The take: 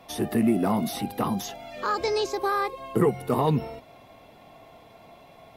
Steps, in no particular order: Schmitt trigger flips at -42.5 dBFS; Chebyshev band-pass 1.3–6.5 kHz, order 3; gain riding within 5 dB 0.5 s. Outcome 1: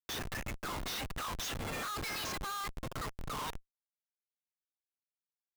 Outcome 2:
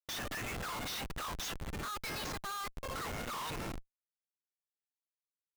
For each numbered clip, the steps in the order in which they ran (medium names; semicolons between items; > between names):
gain riding > Chebyshev band-pass > Schmitt trigger; Chebyshev band-pass > gain riding > Schmitt trigger